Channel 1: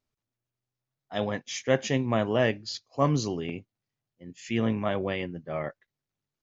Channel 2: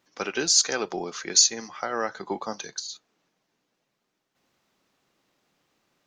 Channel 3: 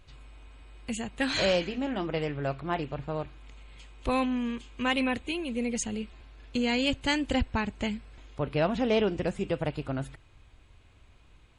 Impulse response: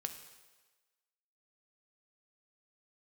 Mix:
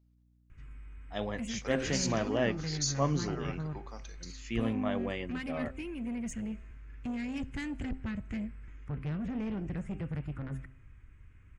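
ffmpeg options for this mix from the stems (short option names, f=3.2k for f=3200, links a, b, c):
-filter_complex "[0:a]aeval=exprs='val(0)+0.00112*(sin(2*PI*60*n/s)+sin(2*PI*2*60*n/s)/2+sin(2*PI*3*60*n/s)/3+sin(2*PI*4*60*n/s)/4+sin(2*PI*5*60*n/s)/5)':c=same,volume=-6dB[a];[1:a]adelay=1450,volume=-18dB,asplit=2[b][c];[c]volume=-7.5dB[d];[2:a]firequalizer=gain_entry='entry(150,0);entry(670,-20);entry(1300,-5);entry(1900,-2);entry(4000,-28);entry(5800,-14)':delay=0.05:min_phase=1,acrossover=split=350|3000[e][f][g];[f]acompressor=threshold=-45dB:ratio=3[h];[e][h][g]amix=inputs=3:normalize=0,asoftclip=type=tanh:threshold=-34dB,adelay=500,volume=1dB,asplit=2[i][j];[j]volume=-12dB[k];[3:a]atrim=start_sample=2205[l];[d][k]amix=inputs=2:normalize=0[m];[m][l]afir=irnorm=-1:irlink=0[n];[a][b][i][n]amix=inputs=4:normalize=0,bandreject=f=130.3:t=h:w=4,bandreject=f=260.6:t=h:w=4,bandreject=f=390.9:t=h:w=4,bandreject=f=521.2:t=h:w=4,bandreject=f=651.5:t=h:w=4,bandreject=f=781.8:t=h:w=4,bandreject=f=912.1:t=h:w=4,bandreject=f=1.0424k:t=h:w=4,bandreject=f=1.1727k:t=h:w=4,bandreject=f=1.303k:t=h:w=4,bandreject=f=1.4333k:t=h:w=4"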